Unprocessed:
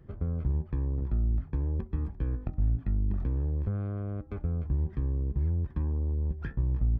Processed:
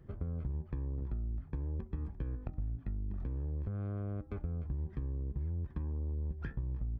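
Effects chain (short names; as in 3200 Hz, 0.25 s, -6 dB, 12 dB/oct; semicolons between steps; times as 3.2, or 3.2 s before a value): compressor, threshold -31 dBFS, peak gain reduction 9.5 dB; gain -2.5 dB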